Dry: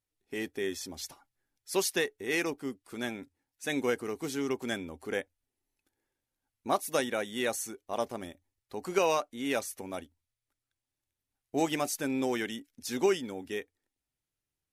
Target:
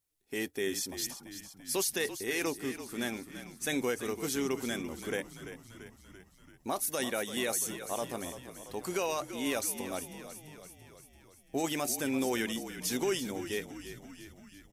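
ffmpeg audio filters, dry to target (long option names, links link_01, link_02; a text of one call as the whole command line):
ffmpeg -i in.wav -filter_complex "[0:a]highshelf=frequency=5800:gain=10,alimiter=limit=-22dB:level=0:latency=1:release=21,asplit=2[link_01][link_02];[link_02]asplit=7[link_03][link_04][link_05][link_06][link_07][link_08][link_09];[link_03]adelay=338,afreqshift=-42,volume=-11.5dB[link_10];[link_04]adelay=676,afreqshift=-84,volume=-15.8dB[link_11];[link_05]adelay=1014,afreqshift=-126,volume=-20.1dB[link_12];[link_06]adelay=1352,afreqshift=-168,volume=-24.4dB[link_13];[link_07]adelay=1690,afreqshift=-210,volume=-28.7dB[link_14];[link_08]adelay=2028,afreqshift=-252,volume=-33dB[link_15];[link_09]adelay=2366,afreqshift=-294,volume=-37.3dB[link_16];[link_10][link_11][link_12][link_13][link_14][link_15][link_16]amix=inputs=7:normalize=0[link_17];[link_01][link_17]amix=inputs=2:normalize=0" out.wav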